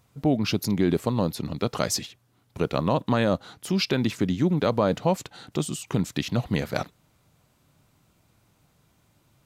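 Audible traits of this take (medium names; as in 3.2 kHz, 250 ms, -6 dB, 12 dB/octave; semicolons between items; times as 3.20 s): noise floor -66 dBFS; spectral tilt -5.5 dB/octave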